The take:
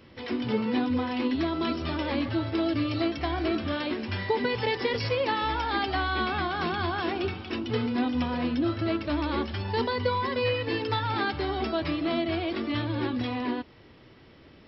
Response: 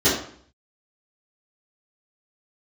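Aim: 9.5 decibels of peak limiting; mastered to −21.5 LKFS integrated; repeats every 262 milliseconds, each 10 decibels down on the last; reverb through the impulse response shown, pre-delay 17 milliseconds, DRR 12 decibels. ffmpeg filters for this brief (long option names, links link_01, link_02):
-filter_complex "[0:a]alimiter=limit=-23dB:level=0:latency=1,aecho=1:1:262|524|786|1048:0.316|0.101|0.0324|0.0104,asplit=2[link_01][link_02];[1:a]atrim=start_sample=2205,adelay=17[link_03];[link_02][link_03]afir=irnorm=-1:irlink=0,volume=-31dB[link_04];[link_01][link_04]amix=inputs=2:normalize=0,volume=9dB"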